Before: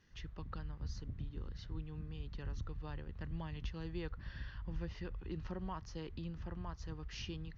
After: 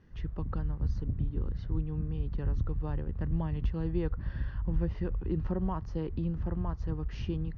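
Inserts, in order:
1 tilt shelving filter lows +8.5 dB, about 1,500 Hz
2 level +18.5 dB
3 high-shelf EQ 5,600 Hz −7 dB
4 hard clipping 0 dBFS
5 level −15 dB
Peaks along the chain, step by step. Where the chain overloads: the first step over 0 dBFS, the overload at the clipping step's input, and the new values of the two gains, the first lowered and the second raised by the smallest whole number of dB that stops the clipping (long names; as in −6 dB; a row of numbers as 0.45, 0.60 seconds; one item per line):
−21.5, −3.0, −3.0, −3.0, −18.0 dBFS
no step passes full scale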